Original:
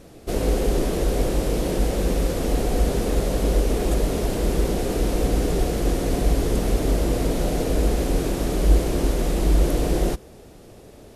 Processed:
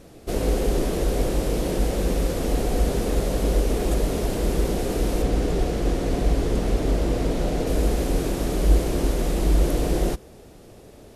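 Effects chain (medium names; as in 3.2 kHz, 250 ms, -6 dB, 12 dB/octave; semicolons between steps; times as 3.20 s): 5.22–7.67 s: treble shelf 9.3 kHz -12 dB; trim -1 dB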